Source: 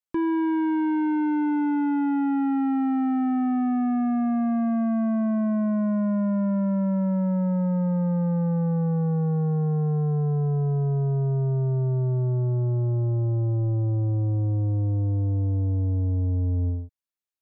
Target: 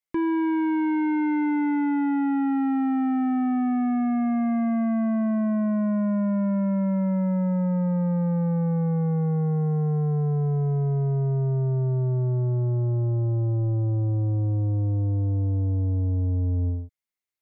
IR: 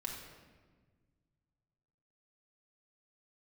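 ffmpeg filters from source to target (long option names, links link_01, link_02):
-af "equalizer=frequency=2100:width_type=o:width=0.2:gain=11"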